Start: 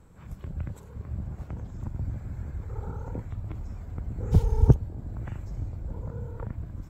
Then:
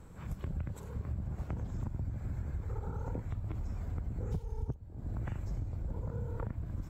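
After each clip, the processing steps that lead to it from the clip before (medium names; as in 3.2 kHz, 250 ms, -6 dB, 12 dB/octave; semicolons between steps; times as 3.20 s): compression 16:1, threshold -35 dBFS, peak gain reduction 25.5 dB; trim +2.5 dB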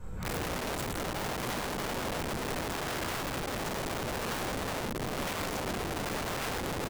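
delay 121 ms -9.5 dB; reverberation RT60 0.50 s, pre-delay 7 ms, DRR -5.5 dB; integer overflow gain 29.5 dB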